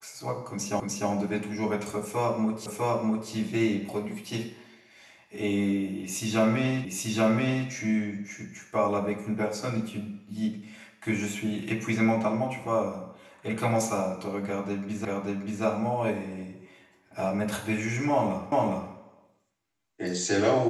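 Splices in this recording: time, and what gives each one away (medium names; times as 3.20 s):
0.80 s: repeat of the last 0.3 s
2.66 s: repeat of the last 0.65 s
6.85 s: repeat of the last 0.83 s
15.05 s: repeat of the last 0.58 s
18.52 s: repeat of the last 0.41 s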